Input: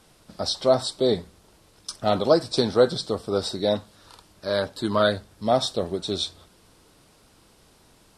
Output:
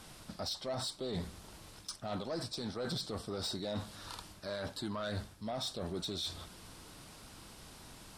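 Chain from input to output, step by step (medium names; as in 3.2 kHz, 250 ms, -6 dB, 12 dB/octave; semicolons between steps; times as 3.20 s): peaking EQ 450 Hz -5.5 dB 0.95 oct; reverse; compression 16:1, threshold -33 dBFS, peak gain reduction 19 dB; reverse; peak limiter -31 dBFS, peak gain reduction 8 dB; saturation -35 dBFS, distortion -17 dB; trim +4.5 dB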